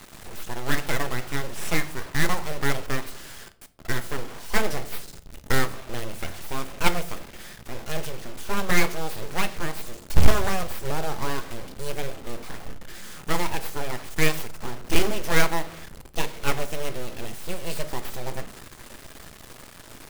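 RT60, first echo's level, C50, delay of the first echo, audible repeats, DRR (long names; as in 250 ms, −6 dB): 0.60 s, no echo audible, 17.0 dB, no echo audible, no echo audible, 11.5 dB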